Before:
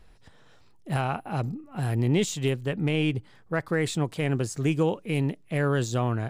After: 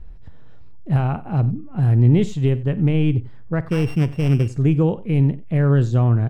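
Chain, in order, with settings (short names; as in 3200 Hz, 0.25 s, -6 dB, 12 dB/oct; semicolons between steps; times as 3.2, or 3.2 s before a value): 3.69–4.48 sample sorter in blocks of 16 samples; RIAA curve playback; tapped delay 50/92 ms -18/-19.5 dB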